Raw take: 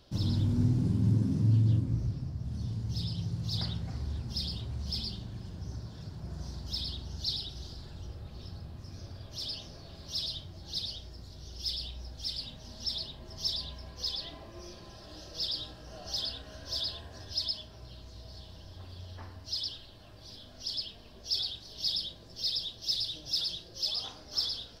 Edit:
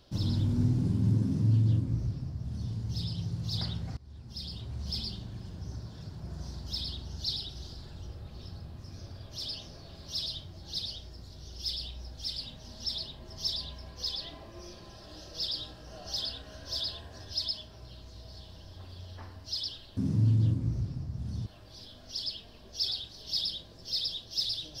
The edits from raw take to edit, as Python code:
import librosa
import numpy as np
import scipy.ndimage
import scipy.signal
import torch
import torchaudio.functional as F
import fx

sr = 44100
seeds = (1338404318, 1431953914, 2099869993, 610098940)

y = fx.edit(x, sr, fx.duplicate(start_s=1.23, length_s=1.49, to_s=19.97),
    fx.fade_in_from(start_s=3.97, length_s=0.9, floor_db=-22.5), tone=tone)